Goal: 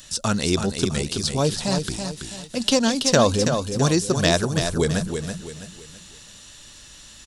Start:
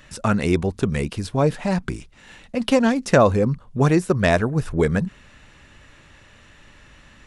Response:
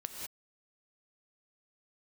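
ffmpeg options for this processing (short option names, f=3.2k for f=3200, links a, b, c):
-filter_complex "[0:a]aecho=1:1:329|658|987|1316:0.447|0.161|0.0579|0.0208,acrossover=split=6500[a][b];[b]acompressor=threshold=-54dB:ratio=4:attack=1:release=60[c];[a][c]amix=inputs=2:normalize=0,aexciter=amount=5.5:drive=7.8:freq=3.3k,volume=-3dB"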